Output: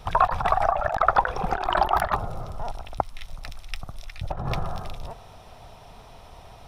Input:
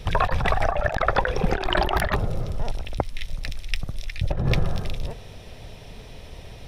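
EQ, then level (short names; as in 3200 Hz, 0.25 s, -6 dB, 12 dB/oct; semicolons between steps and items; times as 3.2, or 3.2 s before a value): band shelf 970 Hz +12 dB 1.3 oct; high shelf 6200 Hz +5 dB; -7.5 dB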